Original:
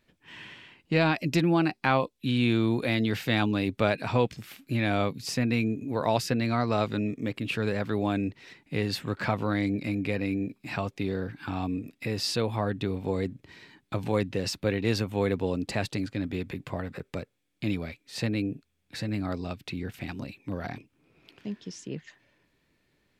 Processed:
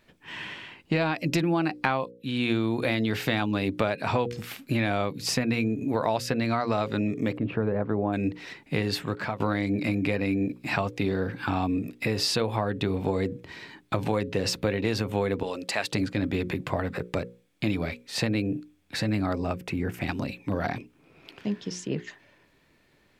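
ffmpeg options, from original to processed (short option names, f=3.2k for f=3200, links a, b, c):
-filter_complex "[0:a]asplit=3[a][b][c];[a]afade=t=out:st=7.36:d=0.02[d];[b]lowpass=1k,afade=t=in:st=7.36:d=0.02,afade=t=out:st=8.12:d=0.02[e];[c]afade=t=in:st=8.12:d=0.02[f];[d][e][f]amix=inputs=3:normalize=0,asettb=1/sr,asplit=3[g][h][i];[g]atrim=end=15.434[j];[h]atrim=start=15.43:end=15.92,asetpts=PTS-STARTPTS,afade=t=in:d=0.004:c=qsin,afade=t=out:st=0.486:d=0.004:c=qsin,highpass=f=1.2k:p=1[k];[i]atrim=start=15.916[l];[j][k]acrossfade=d=0.004:c1=hsin:c2=qsin[m];[m][l]acrossfade=d=0.004:c1=qsin:c2=hsin,asettb=1/sr,asplit=3[n][o][p];[n]atrim=end=19.334[q];[o]atrim=start=19.33:end=20.02,asetpts=PTS-STARTPTS,afade=t=in:d=0.004:c=qsin,afade=t=out:st=0.686:d=0.004:c=qsin,equalizer=f=3.9k:w=1.7:g=-11[r];[p]atrim=start=20.016[s];[q][r]acrossfade=d=0.004:c1=hsin:c2=qsin[t];[t][s]acrossfade=d=0.004:c1=qsin:c2=hsin,asplit=3[u][v][w];[u]atrim=end=2.11,asetpts=PTS-STARTPTS,afade=t=out:st=2.106:d=0.004:c=hsin:silence=0.223872[x];[v]atrim=start=2.11:end=9.4,asetpts=PTS-STARTPTS,afade=t=in:d=0.46:c=qua:silence=0.223872,afade=t=out:st=6.7:d=0.59:silence=0.11885[y];[w]atrim=start=9.4,asetpts=PTS-STARTPTS,afade=t=in:d=0.004:c=hsin:silence=0.11885[z];[x][y][z]concat=n=3:v=0:a=1,equalizer=f=850:t=o:w=2.5:g=3.5,bandreject=f=60:t=h:w=6,bandreject=f=120:t=h:w=6,bandreject=f=180:t=h:w=6,bandreject=f=240:t=h:w=6,bandreject=f=300:t=h:w=6,bandreject=f=360:t=h:w=6,bandreject=f=420:t=h:w=6,bandreject=f=480:t=h:w=6,bandreject=f=540:t=h:w=6,acompressor=threshold=-28dB:ratio=6,volume=6dB"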